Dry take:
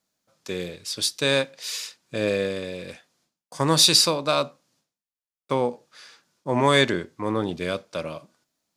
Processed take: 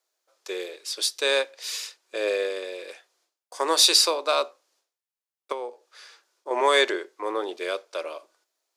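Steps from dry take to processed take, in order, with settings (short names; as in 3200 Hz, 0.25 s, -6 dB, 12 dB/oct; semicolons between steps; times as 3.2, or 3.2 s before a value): elliptic high-pass 370 Hz, stop band 80 dB; 5.52–6.51 compressor 2.5:1, threshold -34 dBFS, peak gain reduction 9 dB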